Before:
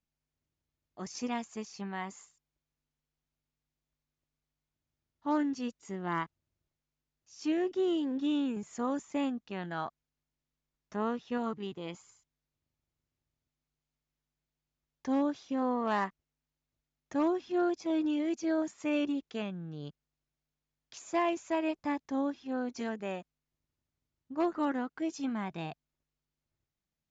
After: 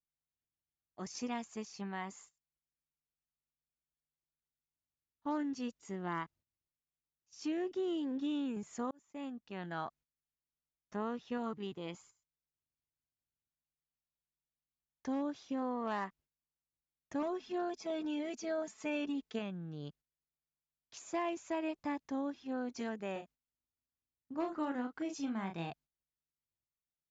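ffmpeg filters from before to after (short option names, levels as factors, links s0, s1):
-filter_complex "[0:a]asettb=1/sr,asplit=3[s0][s1][s2];[s0]atrim=end=17.224[s3];[s1]atrim=start=17.22:end=19.39,asetpts=PTS-STARTPTS,afade=t=in:d=0.004:c=qsin,afade=t=out:st=2.166:d=0.004:c=qsin,aecho=1:1:4.6:0.65,atrim=end_sample=95697[s4];[s2]atrim=start=19.386[s5];[s3][s4]acrossfade=d=0.004:c1=hsin:c2=qsin[s6];[s6][s5]acrossfade=d=0.004:c1=qsin:c2=hsin,asettb=1/sr,asplit=3[s7][s8][s9];[s7]atrim=end=23.124[s10];[s8]atrim=start=23.12:end=25.7,asetpts=PTS-STARTPTS,afade=t=in:d=0.004:c=qsin,afade=t=out:st=2.576:d=0.004:c=qsin,asplit=2[s11][s12];[s12]adelay=36,volume=0.473[s13];[s11][s13]amix=inputs=2:normalize=0,atrim=end_sample=113778[s14];[s9]atrim=start=25.696[s15];[s10][s14]acrossfade=d=0.004:c1=hsin:c2=qsin[s16];[s16][s15]acrossfade=d=0.004:c1=qsin:c2=hsin,asplit=2[s17][s18];[s17]atrim=end=8.91,asetpts=PTS-STARTPTS,afade=t=out:st=8.906:d=0.004:c=hsin[s19];[s18]atrim=start=8.91,asetpts=PTS-STARTPTS,afade=t=in:d=0.89[s20];[s19][s20]concat=n=2:v=0:a=1,agate=range=0.251:threshold=0.00141:ratio=16:detection=peak,acompressor=threshold=0.0251:ratio=2.5,volume=0.75"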